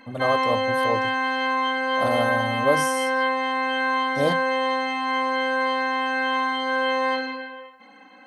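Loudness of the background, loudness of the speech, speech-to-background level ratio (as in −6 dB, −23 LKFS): −23.0 LKFS, −27.5 LKFS, −4.5 dB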